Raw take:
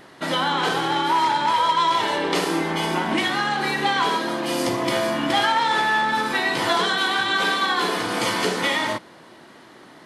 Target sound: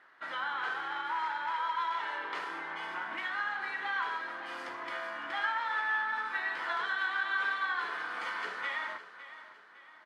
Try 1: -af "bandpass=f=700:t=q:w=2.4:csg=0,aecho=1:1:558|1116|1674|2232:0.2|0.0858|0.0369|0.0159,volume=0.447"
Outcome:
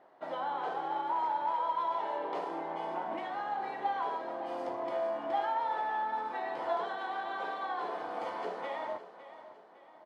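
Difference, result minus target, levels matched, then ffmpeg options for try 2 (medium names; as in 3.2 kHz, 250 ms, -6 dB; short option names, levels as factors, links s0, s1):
500 Hz band +13.0 dB
-af "bandpass=f=1500:t=q:w=2.4:csg=0,aecho=1:1:558|1116|1674|2232:0.2|0.0858|0.0369|0.0159,volume=0.447"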